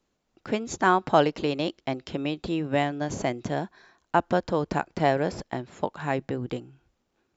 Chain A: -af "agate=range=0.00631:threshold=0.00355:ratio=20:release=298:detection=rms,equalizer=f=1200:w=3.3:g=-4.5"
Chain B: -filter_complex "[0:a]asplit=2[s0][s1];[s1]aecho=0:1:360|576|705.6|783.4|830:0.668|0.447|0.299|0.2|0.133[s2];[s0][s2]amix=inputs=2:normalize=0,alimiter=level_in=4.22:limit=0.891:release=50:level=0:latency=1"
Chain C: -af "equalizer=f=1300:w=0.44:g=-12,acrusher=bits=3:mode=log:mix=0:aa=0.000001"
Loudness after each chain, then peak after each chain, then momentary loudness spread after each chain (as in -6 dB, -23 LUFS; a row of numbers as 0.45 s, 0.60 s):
-28.0 LUFS, -14.5 LUFS, -32.5 LUFS; -6.5 dBFS, -1.0 dBFS, -16.0 dBFS; 11 LU, 7 LU, 9 LU